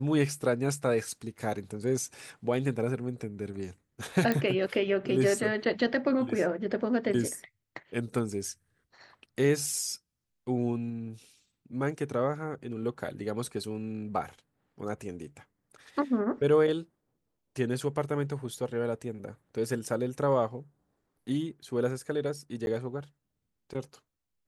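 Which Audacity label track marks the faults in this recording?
4.320000	4.320000	click −14 dBFS
22.660000	22.670000	drop-out 11 ms

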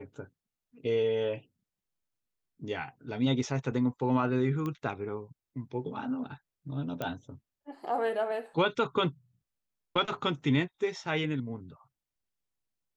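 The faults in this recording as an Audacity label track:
4.660000	4.660000	click −23 dBFS
7.020000	7.020000	click −20 dBFS

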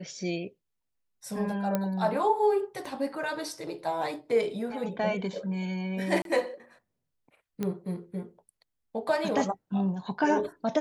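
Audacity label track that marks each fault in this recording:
1.750000	1.750000	click −14 dBFS
2.850000	2.850000	drop-out 3.5 ms
6.220000	6.250000	drop-out 32 ms
7.630000	7.630000	click −18 dBFS

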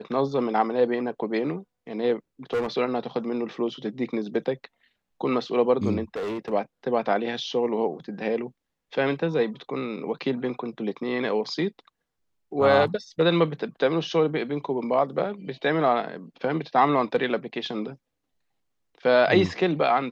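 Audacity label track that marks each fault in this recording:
2.530000	2.670000	clipping −21.5 dBFS
6.160000	6.530000	clipping −27 dBFS

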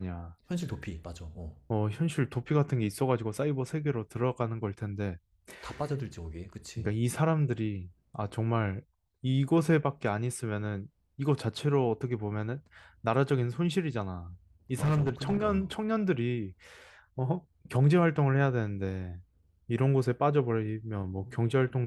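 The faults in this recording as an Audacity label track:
14.830000	15.420000	clipping −23 dBFS

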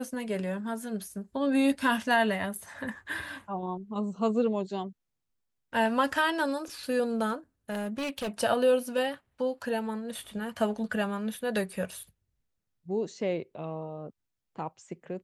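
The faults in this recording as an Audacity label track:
7.700000	8.290000	clipping −29 dBFS

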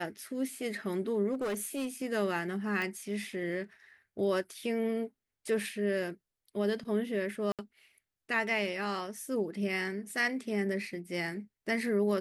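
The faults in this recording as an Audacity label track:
1.330000	1.870000	clipping −29.5 dBFS
2.820000	2.820000	click −22 dBFS
7.520000	7.590000	drop-out 67 ms

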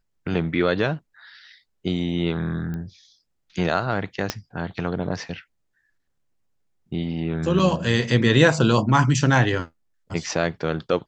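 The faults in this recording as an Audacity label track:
2.740000	2.740000	click −21 dBFS
4.300000	4.300000	click −8 dBFS
7.590000	7.590000	drop-out 4.8 ms

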